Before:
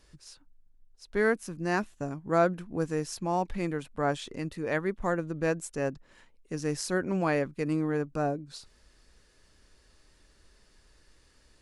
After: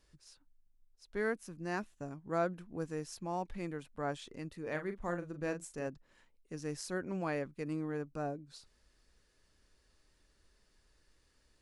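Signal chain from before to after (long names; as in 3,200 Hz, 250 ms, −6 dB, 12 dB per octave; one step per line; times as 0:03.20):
0:04.62–0:05.87: double-tracking delay 40 ms −8.5 dB
level −9 dB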